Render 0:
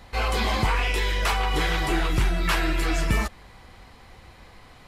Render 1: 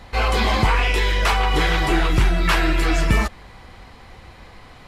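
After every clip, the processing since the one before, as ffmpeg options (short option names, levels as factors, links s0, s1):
-af "highshelf=f=7500:g=-6.5,volume=1.88"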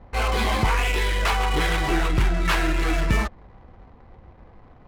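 -af "adynamicsmooth=sensitivity=5:basefreq=560,volume=0.668"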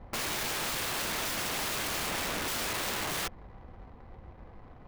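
-af "aeval=exprs='(mod(22.4*val(0)+1,2)-1)/22.4':c=same,volume=0.841"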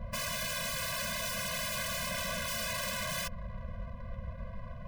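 -af "alimiter=level_in=4.22:limit=0.0631:level=0:latency=1:release=27,volume=0.237,afftfilt=real='re*eq(mod(floor(b*sr/1024/240),2),0)':imag='im*eq(mod(floor(b*sr/1024/240),2),0)':win_size=1024:overlap=0.75,volume=2.82"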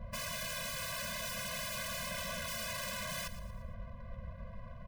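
-af "aecho=1:1:115|230|345|460:0.2|0.0858|0.0369|0.0159,volume=0.596"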